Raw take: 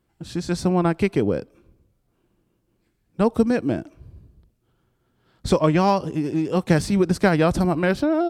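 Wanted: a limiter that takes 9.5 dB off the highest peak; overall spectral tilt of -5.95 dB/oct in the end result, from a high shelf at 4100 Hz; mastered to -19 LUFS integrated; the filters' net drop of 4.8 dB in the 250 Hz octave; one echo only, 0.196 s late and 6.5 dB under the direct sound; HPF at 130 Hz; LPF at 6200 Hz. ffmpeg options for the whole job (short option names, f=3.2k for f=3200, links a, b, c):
-af "highpass=130,lowpass=6.2k,equalizer=f=250:t=o:g=-6.5,highshelf=f=4.1k:g=-5,alimiter=limit=-16.5dB:level=0:latency=1,aecho=1:1:196:0.473,volume=8.5dB"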